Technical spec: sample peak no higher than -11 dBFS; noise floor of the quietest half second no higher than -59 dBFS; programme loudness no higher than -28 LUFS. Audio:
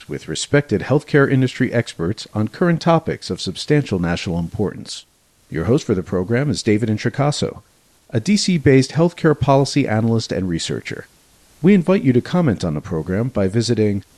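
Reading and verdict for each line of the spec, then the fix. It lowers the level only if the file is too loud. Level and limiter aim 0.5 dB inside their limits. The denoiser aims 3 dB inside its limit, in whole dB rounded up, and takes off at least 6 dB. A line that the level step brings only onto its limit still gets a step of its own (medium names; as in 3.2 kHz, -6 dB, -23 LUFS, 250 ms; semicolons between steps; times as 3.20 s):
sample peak -1.5 dBFS: fail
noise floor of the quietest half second -55 dBFS: fail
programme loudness -18.5 LUFS: fail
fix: trim -10 dB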